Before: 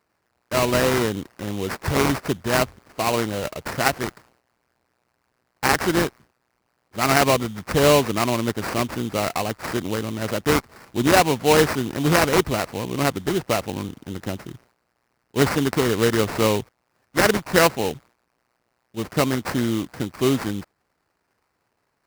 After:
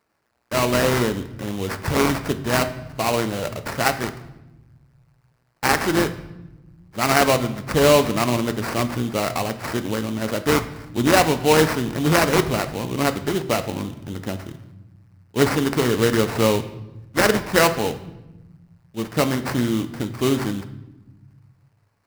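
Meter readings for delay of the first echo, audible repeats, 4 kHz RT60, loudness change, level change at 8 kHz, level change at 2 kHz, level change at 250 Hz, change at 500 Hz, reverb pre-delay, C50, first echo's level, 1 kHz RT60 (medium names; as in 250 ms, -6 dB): no echo, no echo, 0.75 s, +0.5 dB, +0.5 dB, +0.5 dB, +1.0 dB, +0.5 dB, 3 ms, 13.0 dB, no echo, 0.90 s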